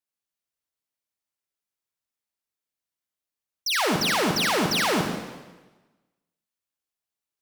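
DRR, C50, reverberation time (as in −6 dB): 2.5 dB, 3.5 dB, 1.2 s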